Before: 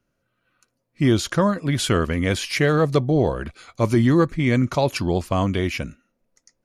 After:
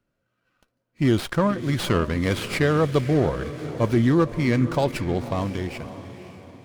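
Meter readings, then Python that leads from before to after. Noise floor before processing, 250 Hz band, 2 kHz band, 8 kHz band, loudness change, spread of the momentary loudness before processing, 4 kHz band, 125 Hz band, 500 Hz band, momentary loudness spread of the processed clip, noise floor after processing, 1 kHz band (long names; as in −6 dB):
−75 dBFS, −2.0 dB, −3.0 dB, −7.0 dB, −2.0 dB, 7 LU, −4.5 dB, −2.0 dB, −2.0 dB, 12 LU, −77 dBFS, −2.0 dB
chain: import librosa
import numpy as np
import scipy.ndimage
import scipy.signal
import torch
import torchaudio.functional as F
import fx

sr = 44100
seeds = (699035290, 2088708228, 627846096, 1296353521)

y = fx.fade_out_tail(x, sr, length_s=1.85)
y = fx.echo_diffused(y, sr, ms=530, feedback_pct=45, wet_db=-12.5)
y = fx.running_max(y, sr, window=5)
y = F.gain(torch.from_numpy(y), -2.0).numpy()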